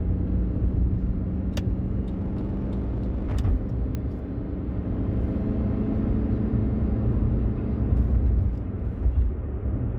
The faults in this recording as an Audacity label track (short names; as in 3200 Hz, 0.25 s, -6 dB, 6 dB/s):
2.040000	3.370000	clipped -23.5 dBFS
3.950000	3.950000	pop -18 dBFS